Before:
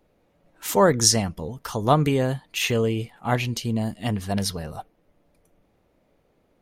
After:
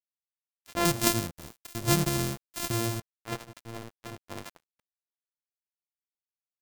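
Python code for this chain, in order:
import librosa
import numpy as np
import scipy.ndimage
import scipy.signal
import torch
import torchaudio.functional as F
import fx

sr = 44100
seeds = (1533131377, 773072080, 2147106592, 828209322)

y = np.r_[np.sort(x[:len(x) // 128 * 128].reshape(-1, 128), axis=1).ravel(), x[len(x) // 128 * 128:]]
y = fx.bass_treble(y, sr, bass_db=9, treble_db=10, at=(0.85, 3.0))
y = np.sign(y) * np.maximum(np.abs(y) - 10.0 ** (-24.5 / 20.0), 0.0)
y = y * librosa.db_to_amplitude(-8.5)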